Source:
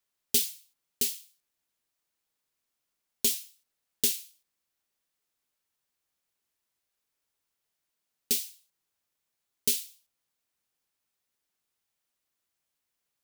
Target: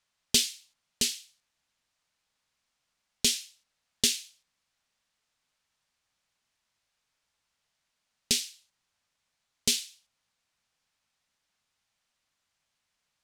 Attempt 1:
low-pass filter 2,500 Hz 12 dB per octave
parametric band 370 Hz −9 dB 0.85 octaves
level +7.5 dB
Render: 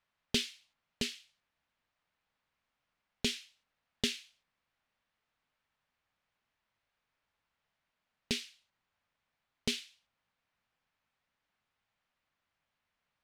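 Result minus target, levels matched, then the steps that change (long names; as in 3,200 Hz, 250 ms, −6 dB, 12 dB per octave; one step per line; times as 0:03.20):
8,000 Hz band −6.5 dB
change: low-pass filter 6,600 Hz 12 dB per octave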